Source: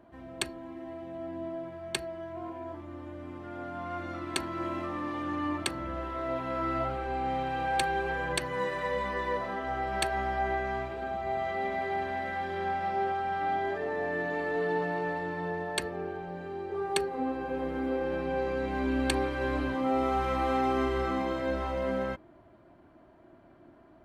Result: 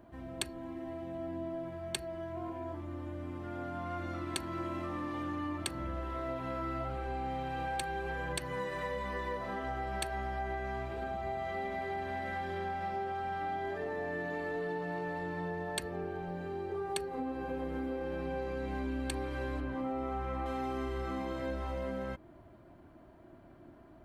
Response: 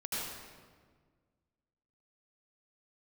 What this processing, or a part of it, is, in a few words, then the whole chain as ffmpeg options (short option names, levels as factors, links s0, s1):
ASMR close-microphone chain: -filter_complex "[0:a]asettb=1/sr,asplit=3[s0][s1][s2];[s0]atrim=end=19.604[s3];[s1]atrim=start=19.6:end=20.46,asetpts=PTS-STARTPTS,afade=t=in:d=0.004:c=qsin,afade=t=out:st=0.856:d=0.004:c=qsin,acrossover=split=2500[s4][s5];[s5]acompressor=threshold=0.00112:ratio=4:attack=1:release=60[s6];[s4][s6]amix=inputs=2:normalize=0[s7];[s2]atrim=start=20.456[s8];[s3][s7]acrossfade=d=0.004:c1=hsin:c2=qsin[s9];[s9][s8]acrossfade=d=0.004:c1=qsin:c2=hsin,lowshelf=f=180:g=7.5,acompressor=threshold=0.0224:ratio=4,highshelf=f=7100:g=7.5,volume=0.841"